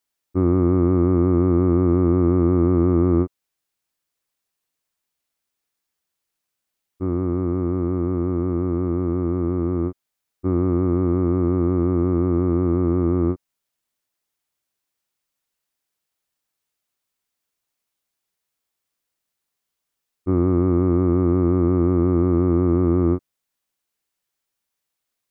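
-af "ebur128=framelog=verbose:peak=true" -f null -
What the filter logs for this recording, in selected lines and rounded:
Integrated loudness:
  I:         -20.1 LUFS
  Threshold: -30.2 LUFS
Loudness range:
  LRA:         9.9 LU
  Threshold: -42.2 LUFS
  LRA low:   -28.9 LUFS
  LRA high:  -18.9 LUFS
True peak:
  Peak:       -7.4 dBFS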